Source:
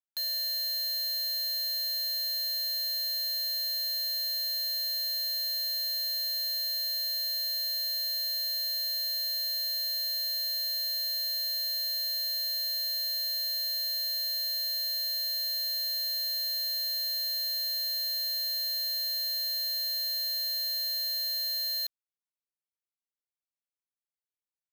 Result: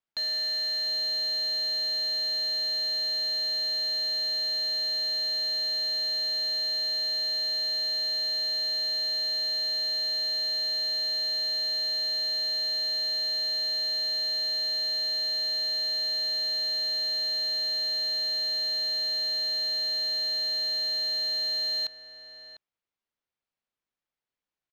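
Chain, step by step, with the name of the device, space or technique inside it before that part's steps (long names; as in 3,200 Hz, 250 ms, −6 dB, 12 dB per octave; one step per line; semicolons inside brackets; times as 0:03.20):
shout across a valley (high-frequency loss of the air 170 metres; slap from a distant wall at 120 metres, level −10 dB)
level +8.5 dB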